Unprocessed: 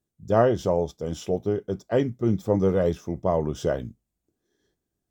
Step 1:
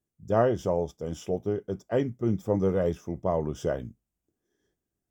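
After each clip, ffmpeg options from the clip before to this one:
ffmpeg -i in.wav -af "equalizer=frequency=4100:width=5.2:gain=-13.5,volume=-3.5dB" out.wav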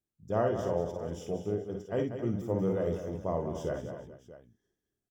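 ffmpeg -i in.wav -af "aecho=1:1:48|58|190|269|427|638:0.398|0.355|0.355|0.282|0.119|0.15,volume=-6.5dB" out.wav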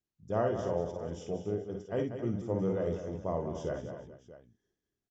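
ffmpeg -i in.wav -af "aresample=16000,aresample=44100,volume=-1.5dB" out.wav

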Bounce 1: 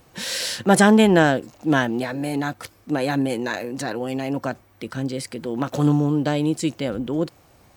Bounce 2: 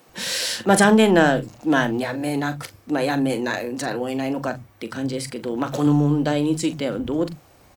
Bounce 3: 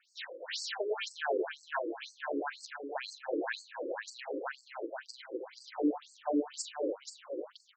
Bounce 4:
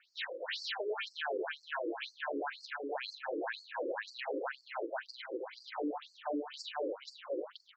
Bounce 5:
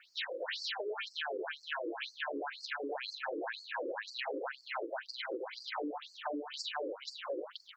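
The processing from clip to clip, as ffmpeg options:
ffmpeg -i in.wav -filter_complex "[0:a]asplit=2[link_01][link_02];[link_02]asoftclip=type=tanh:threshold=-17dB,volume=-9dB[link_03];[link_01][link_03]amix=inputs=2:normalize=0,asplit=2[link_04][link_05];[link_05]adelay=41,volume=-12dB[link_06];[link_04][link_06]amix=inputs=2:normalize=0,acrossover=split=160[link_07][link_08];[link_07]adelay=90[link_09];[link_09][link_08]amix=inputs=2:normalize=0,volume=-1dB" out.wav
ffmpeg -i in.wav -af "alimiter=limit=-9.5dB:level=0:latency=1:release=149,aecho=1:1:194|283|414|478:0.15|0.473|0.106|0.473,afftfilt=real='re*between(b*sr/1024,380*pow(6100/380,0.5+0.5*sin(2*PI*2*pts/sr))/1.41,380*pow(6100/380,0.5+0.5*sin(2*PI*2*pts/sr))*1.41)':imag='im*between(b*sr/1024,380*pow(6100/380,0.5+0.5*sin(2*PI*2*pts/sr))/1.41,380*pow(6100/380,0.5+0.5*sin(2*PI*2*pts/sr))*1.41)':win_size=1024:overlap=0.75,volume=-6.5dB" out.wav
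ffmpeg -i in.wav -af "lowpass=frequency=4200:width=0.5412,lowpass=frequency=4200:width=1.3066,equalizer=frequency=120:width_type=o:width=1.4:gain=-14,alimiter=level_in=9dB:limit=-24dB:level=0:latency=1:release=134,volume=-9dB,volume=4.5dB" out.wav
ffmpeg -i in.wav -af "acompressor=threshold=-43dB:ratio=6,volume=7dB" out.wav

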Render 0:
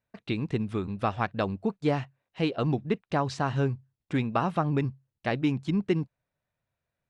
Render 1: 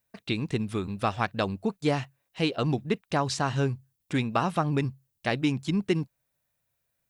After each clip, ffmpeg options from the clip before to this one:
ffmpeg -i in.wav -af "aemphasis=mode=production:type=75kf" out.wav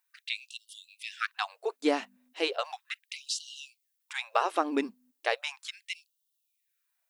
ffmpeg -i in.wav -af "aeval=exprs='val(0)+0.00355*(sin(2*PI*50*n/s)+sin(2*PI*2*50*n/s)/2+sin(2*PI*3*50*n/s)/3+sin(2*PI*4*50*n/s)/4+sin(2*PI*5*50*n/s)/5)':channel_layout=same,afftfilt=real='re*gte(b*sr/1024,210*pow(2800/210,0.5+0.5*sin(2*PI*0.36*pts/sr)))':imag='im*gte(b*sr/1024,210*pow(2800/210,0.5+0.5*sin(2*PI*0.36*pts/sr)))':win_size=1024:overlap=0.75" out.wav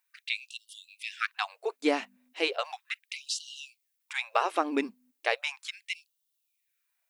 ffmpeg -i in.wav -af "equalizer=frequency=2300:width=3.3:gain=4.5" out.wav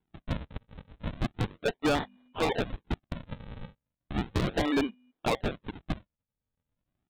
ffmpeg -i in.wav -af "aresample=8000,acrusher=samples=13:mix=1:aa=0.000001:lfo=1:lforange=20.8:lforate=0.35,aresample=44100,asoftclip=type=hard:threshold=-27.5dB,volume=5.5dB" out.wav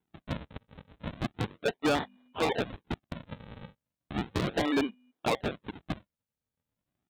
ffmpeg -i in.wav -af "highpass=frequency=120:poles=1" out.wav

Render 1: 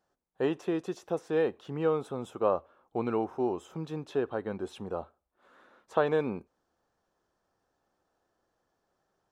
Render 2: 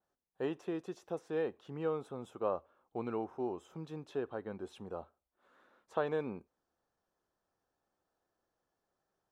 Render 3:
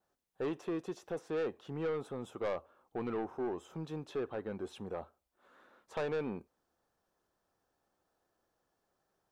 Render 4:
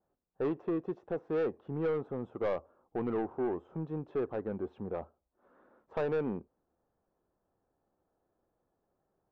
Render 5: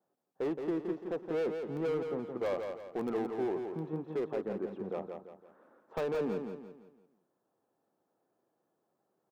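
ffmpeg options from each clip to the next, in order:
ffmpeg -i in.wav -af "adynamicequalizer=threshold=0.00447:dfrequency=2800:dqfactor=0.7:tfrequency=2800:tqfactor=0.7:attack=5:release=100:ratio=0.375:range=2:mode=cutabove:tftype=highshelf,volume=-7.5dB" out.wav
ffmpeg -i in.wav -af "asoftclip=type=tanh:threshold=-34dB,volume=4dB" out.wav
ffmpeg -i in.wav -af "adynamicsmooth=sensitivity=1.5:basefreq=970,volume=4.5dB" out.wav
ffmpeg -i in.wav -filter_complex "[0:a]acrossover=split=130[link_01][link_02];[link_01]acrusher=bits=6:mix=0:aa=0.000001[link_03];[link_03][link_02]amix=inputs=2:normalize=0,volume=28.5dB,asoftclip=hard,volume=-28.5dB,aecho=1:1:170|340|510|680|850:0.501|0.195|0.0762|0.0297|0.0116" out.wav

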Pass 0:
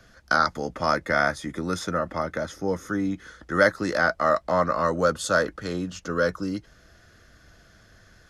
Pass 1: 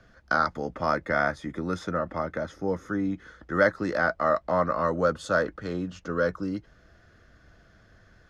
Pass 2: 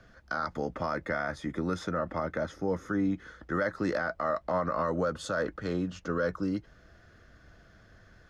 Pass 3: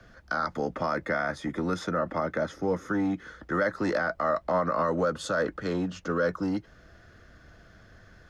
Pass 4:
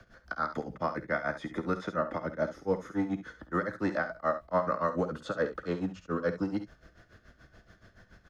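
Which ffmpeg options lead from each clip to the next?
ffmpeg -i in.wav -af "aemphasis=mode=reproduction:type=75kf,volume=-1.5dB" out.wav
ffmpeg -i in.wav -af "alimiter=limit=-20dB:level=0:latency=1:release=65" out.wav
ffmpeg -i in.wav -filter_complex "[0:a]acrossover=split=120|410|1800[link_01][link_02][link_03][link_04];[link_01]acompressor=threshold=-54dB:ratio=6[link_05];[link_02]volume=29.5dB,asoftclip=hard,volume=-29.5dB[link_06];[link_05][link_06][link_03][link_04]amix=inputs=4:normalize=0,volume=3.5dB" out.wav
ffmpeg -i in.wav -filter_complex "[0:a]tremolo=f=7:d=1,aecho=1:1:52|68:0.178|0.224,acrossover=split=3900[link_01][link_02];[link_02]acompressor=threshold=-58dB:ratio=4:attack=1:release=60[link_03];[link_01][link_03]amix=inputs=2:normalize=0" out.wav

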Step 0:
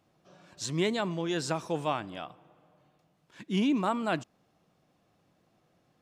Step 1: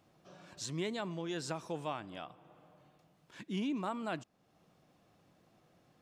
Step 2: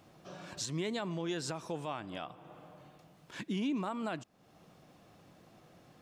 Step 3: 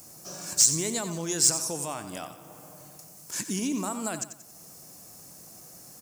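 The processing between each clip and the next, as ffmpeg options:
ffmpeg -i in.wav -af "acompressor=threshold=-54dB:ratio=1.5,volume=1.5dB" out.wav
ffmpeg -i in.wav -af "alimiter=level_in=11dB:limit=-24dB:level=0:latency=1:release=346,volume=-11dB,volume=8dB" out.wav
ffmpeg -i in.wav -filter_complex "[0:a]aexciter=amount=13.5:drive=6:freq=5200,asoftclip=type=tanh:threshold=-15.5dB,asplit=2[link_01][link_02];[link_02]aecho=0:1:91|182|273|364:0.282|0.116|0.0474|0.0194[link_03];[link_01][link_03]amix=inputs=2:normalize=0,volume=3.5dB" out.wav

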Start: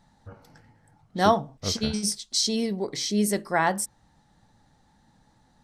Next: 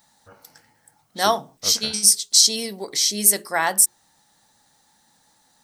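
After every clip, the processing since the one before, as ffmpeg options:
ffmpeg -i in.wav -af "aemphasis=mode=production:type=riaa,bandreject=frequency=60:width_type=h:width=6,bandreject=frequency=120:width_type=h:width=6,bandreject=frequency=180:width_type=h:width=6,bandreject=frequency=240:width_type=h:width=6,bandreject=frequency=300:width_type=h:width=6,bandreject=frequency=360:width_type=h:width=6,bandreject=frequency=420:width_type=h:width=6,volume=1.5dB" out.wav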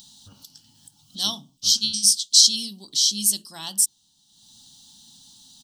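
ffmpeg -i in.wav -af "firequalizer=gain_entry='entry(260,0);entry(440,-21);entry(1000,-13);entry(2100,-25);entry(3000,8);entry(11000,-3)':delay=0.05:min_phase=1,acompressor=mode=upward:threshold=-34dB:ratio=2.5,volume=-4dB" out.wav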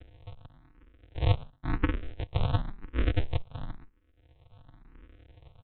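ffmpeg -i in.wav -filter_complex "[0:a]aresample=8000,acrusher=samples=40:mix=1:aa=0.000001,aresample=44100,asplit=2[link_01][link_02];[link_02]afreqshift=0.96[link_03];[link_01][link_03]amix=inputs=2:normalize=1,volume=8dB" out.wav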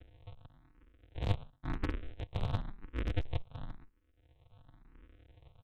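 ffmpeg -i in.wav -af "aeval=exprs='clip(val(0),-1,0.0398)':channel_layout=same,volume=-5.5dB" out.wav

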